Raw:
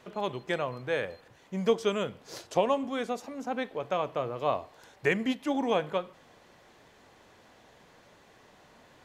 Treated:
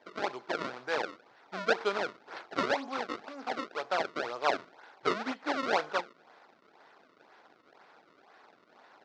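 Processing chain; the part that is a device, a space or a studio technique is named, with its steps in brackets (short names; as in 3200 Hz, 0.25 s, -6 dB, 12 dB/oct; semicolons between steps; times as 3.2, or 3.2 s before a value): circuit-bent sampling toy (decimation with a swept rate 31×, swing 160% 2 Hz; speaker cabinet 410–4900 Hz, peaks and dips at 520 Hz -4 dB, 820 Hz +4 dB, 1400 Hz +6 dB, 3000 Hz -4 dB)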